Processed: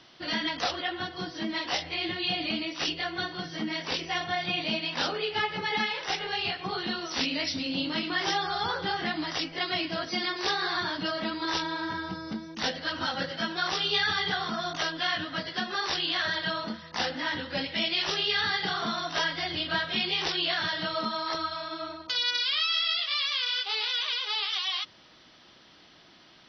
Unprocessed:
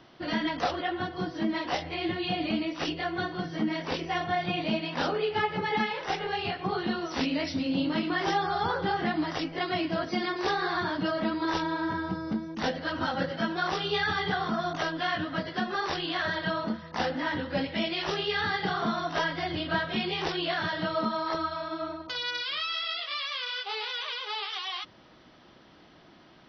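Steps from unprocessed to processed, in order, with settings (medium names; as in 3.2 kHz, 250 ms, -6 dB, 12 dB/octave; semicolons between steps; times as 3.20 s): peaking EQ 5.1 kHz +12.5 dB 2.9 oct; trim -5 dB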